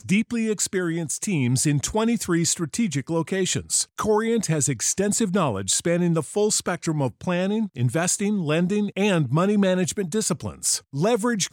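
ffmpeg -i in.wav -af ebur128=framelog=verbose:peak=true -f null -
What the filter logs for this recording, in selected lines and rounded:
Integrated loudness:
  I:         -22.8 LUFS
  Threshold: -32.8 LUFS
Loudness range:
  LRA:         1.0 LU
  Threshold: -42.7 LUFS
  LRA low:   -23.2 LUFS
  LRA high:  -22.2 LUFS
True peak:
  Peak:       -9.1 dBFS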